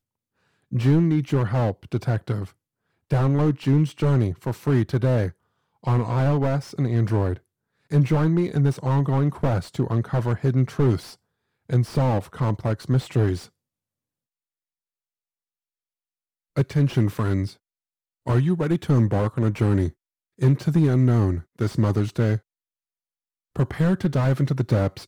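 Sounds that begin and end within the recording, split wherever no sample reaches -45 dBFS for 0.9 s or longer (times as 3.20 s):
16.56–22.39 s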